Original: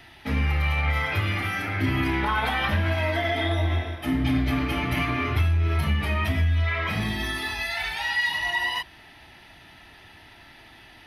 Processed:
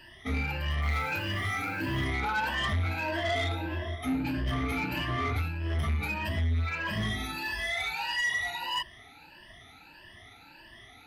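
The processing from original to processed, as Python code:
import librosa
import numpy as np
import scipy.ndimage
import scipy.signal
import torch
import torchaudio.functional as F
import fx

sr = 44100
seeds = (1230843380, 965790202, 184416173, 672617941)

y = fx.spec_ripple(x, sr, per_octave=1.3, drift_hz=1.6, depth_db=21)
y = 10.0 ** (-16.5 / 20.0) * np.tanh(y / 10.0 ** (-16.5 / 20.0))
y = fx.quant_dither(y, sr, seeds[0], bits=8, dither='none', at=(0.82, 2.04))
y = F.gain(torch.from_numpy(y), -7.5).numpy()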